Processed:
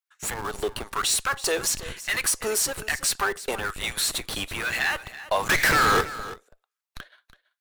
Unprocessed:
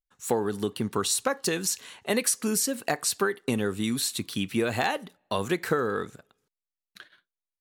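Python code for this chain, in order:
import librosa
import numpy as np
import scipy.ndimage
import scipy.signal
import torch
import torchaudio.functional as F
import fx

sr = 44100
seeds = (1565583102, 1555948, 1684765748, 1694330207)

p1 = scipy.signal.sosfilt(scipy.signal.butter(2, 260.0, 'highpass', fs=sr, output='sos'), x)
p2 = 10.0 ** (-20.5 / 20.0) * np.tanh(p1 / 10.0 ** (-20.5 / 20.0))
p3 = fx.filter_lfo_highpass(p2, sr, shape='sine', hz=1.1, low_hz=540.0, high_hz=1900.0, q=2.0)
p4 = fx.schmitt(p3, sr, flips_db=-34.5)
p5 = p3 + (p4 * 10.0 ** (-4.5 / 20.0))
p6 = fx.power_curve(p5, sr, exponent=0.35, at=(5.49, 6.01))
p7 = p6 + fx.echo_single(p6, sr, ms=330, db=-15.5, dry=0)
y = p7 * 10.0 ** (2.5 / 20.0)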